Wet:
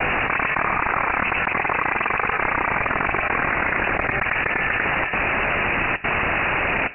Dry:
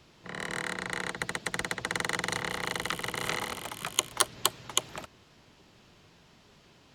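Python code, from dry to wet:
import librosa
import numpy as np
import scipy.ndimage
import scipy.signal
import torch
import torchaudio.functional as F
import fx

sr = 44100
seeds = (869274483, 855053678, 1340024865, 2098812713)

p1 = fx.highpass(x, sr, hz=470.0, slope=6)
p2 = fx.rider(p1, sr, range_db=10, speed_s=0.5)
p3 = p1 + F.gain(torch.from_numpy(p2), -2.0).numpy()
p4 = fx.step_gate(p3, sr, bpm=164, pattern='xx.x..xxxx', floor_db=-60.0, edge_ms=4.5)
p5 = fx.noise_vocoder(p4, sr, seeds[0], bands=16)
p6 = p5 + 10.0 ** (-4.0 / 20.0) * np.pad(p5, (int(97 * sr / 1000.0), 0))[:len(p5)]
p7 = fx.rev_fdn(p6, sr, rt60_s=1.2, lf_ratio=1.0, hf_ratio=0.55, size_ms=17.0, drr_db=15.5)
p8 = np.repeat(p7[::8], 8)[:len(p7)]
p9 = fx.freq_invert(p8, sr, carrier_hz=2800)
y = fx.env_flatten(p9, sr, amount_pct=100)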